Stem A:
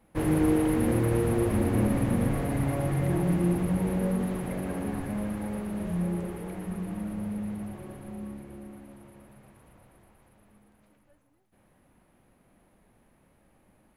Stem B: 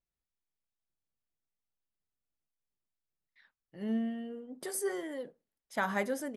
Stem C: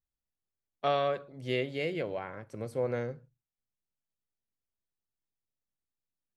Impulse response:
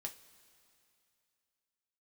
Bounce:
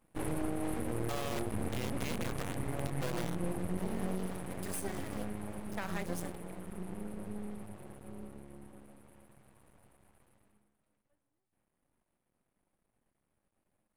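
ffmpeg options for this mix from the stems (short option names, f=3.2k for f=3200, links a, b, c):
-filter_complex "[0:a]equalizer=f=8.6k:t=o:w=0.27:g=11,flanger=delay=5.3:depth=5:regen=-74:speed=0.94:shape=triangular,volume=-5.5dB,afade=t=out:st=10.3:d=0.42:silence=0.316228[a];[1:a]highshelf=f=5k:g=8.5,aeval=exprs='val(0)*gte(abs(val(0)),0.0106)':c=same,volume=-8.5dB[b];[2:a]acrusher=bits=4:mix=0:aa=0.000001,adelay=250,volume=-7.5dB[c];[a][b][c]amix=inputs=3:normalize=0,acontrast=37,aeval=exprs='max(val(0),0)':c=same,alimiter=limit=-23.5dB:level=0:latency=1:release=143"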